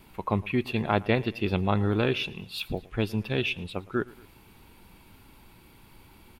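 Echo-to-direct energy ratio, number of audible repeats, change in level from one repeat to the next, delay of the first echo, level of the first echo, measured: -21.0 dB, 2, -5.0 dB, 113 ms, -22.0 dB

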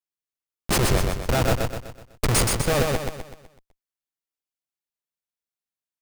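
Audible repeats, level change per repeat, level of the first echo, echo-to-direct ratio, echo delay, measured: 5, -7.0 dB, -3.0 dB, -2.0 dB, 125 ms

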